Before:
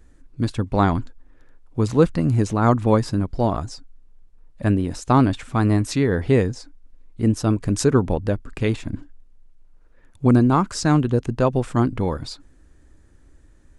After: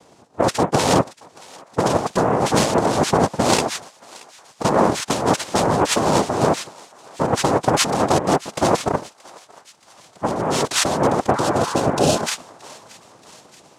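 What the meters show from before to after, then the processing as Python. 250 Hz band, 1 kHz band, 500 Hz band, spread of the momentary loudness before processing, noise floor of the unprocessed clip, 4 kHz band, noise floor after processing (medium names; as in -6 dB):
-2.0 dB, +7.0 dB, +4.0 dB, 10 LU, -51 dBFS, +11.5 dB, -52 dBFS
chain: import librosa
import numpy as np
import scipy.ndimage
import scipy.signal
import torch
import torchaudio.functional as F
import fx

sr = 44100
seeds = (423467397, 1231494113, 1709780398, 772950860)

y = fx.noise_vocoder(x, sr, seeds[0], bands=2)
y = fx.over_compress(y, sr, threshold_db=-23.0, ratio=-1.0)
y = fx.echo_thinned(y, sr, ms=627, feedback_pct=66, hz=1100.0, wet_db=-20.0)
y = fx.spec_repair(y, sr, seeds[1], start_s=11.37, length_s=0.83, low_hz=840.0, high_hz=2400.0, source='both')
y = y * 10.0 ** (5.5 / 20.0)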